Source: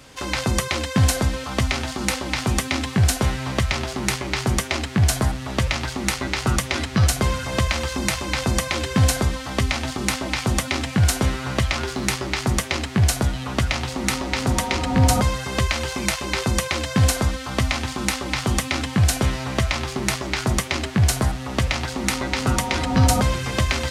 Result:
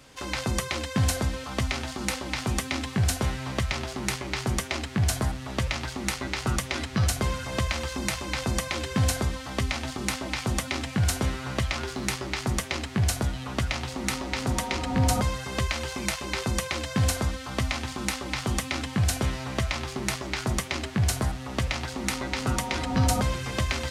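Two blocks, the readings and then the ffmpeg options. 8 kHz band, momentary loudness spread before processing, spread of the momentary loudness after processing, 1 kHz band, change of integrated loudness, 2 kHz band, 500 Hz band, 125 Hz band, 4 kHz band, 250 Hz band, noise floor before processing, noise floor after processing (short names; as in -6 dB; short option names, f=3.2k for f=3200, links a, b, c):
-6.0 dB, 5 LU, 5 LU, -6.0 dB, -6.0 dB, -6.0 dB, -6.0 dB, -6.5 dB, -6.0 dB, -6.0 dB, -33 dBFS, -39 dBFS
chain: -af "bandreject=f=87.86:t=h:w=4,bandreject=f=175.72:t=h:w=4,volume=-6dB"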